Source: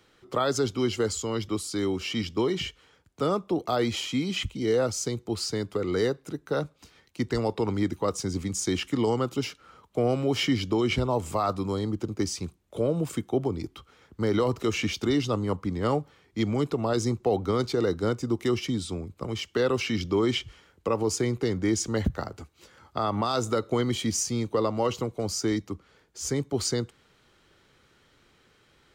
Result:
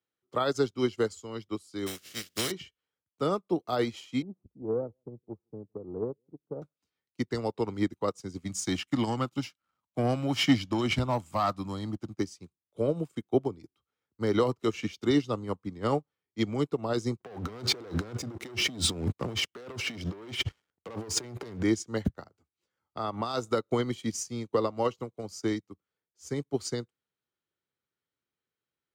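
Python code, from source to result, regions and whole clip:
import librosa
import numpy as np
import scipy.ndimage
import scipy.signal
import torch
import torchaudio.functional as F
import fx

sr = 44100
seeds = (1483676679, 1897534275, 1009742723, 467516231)

y = fx.spec_flatten(x, sr, power=0.3, at=(1.86, 2.5), fade=0.02)
y = fx.peak_eq(y, sr, hz=900.0, db=-13.0, octaves=0.63, at=(1.86, 2.5), fade=0.02)
y = fx.notch(y, sr, hz=2400.0, q=21.0, at=(1.86, 2.5), fade=0.02)
y = fx.chain(y, sr, fx.bessel_lowpass(hz=540.0, order=8),
    fx.echo_single(ms=160, db=-23.5),
    fx.transformer_sat(knee_hz=230.0), at=(4.22, 6.62))
y = fx.chain(y, sr, fx.peak_eq(hz=430.0, db=-14.5, octaves=0.39),
    fx.leveller(passes=1), at=(8.45, 12.2))
y = fx.chain(y, sr, fx.high_shelf(hz=4900.0, db=-5.5),
    fx.leveller(passes=3),
    fx.over_compress(threshold_db=-28.0, ratio=-1.0), at=(17.2, 21.63))
y = scipy.signal.sosfilt(scipy.signal.butter(2, 84.0, 'highpass', fs=sr, output='sos'), y)
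y = fx.upward_expand(y, sr, threshold_db=-43.0, expansion=2.5)
y = y * 10.0 ** (3.5 / 20.0)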